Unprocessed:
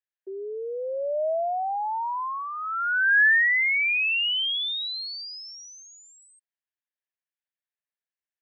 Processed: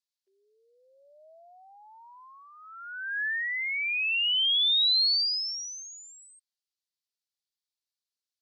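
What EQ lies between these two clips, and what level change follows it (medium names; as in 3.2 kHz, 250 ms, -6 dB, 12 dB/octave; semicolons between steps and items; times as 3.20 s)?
band-pass filter 4.4 kHz, Q 2.8; tilt EQ +5 dB/octave; 0.0 dB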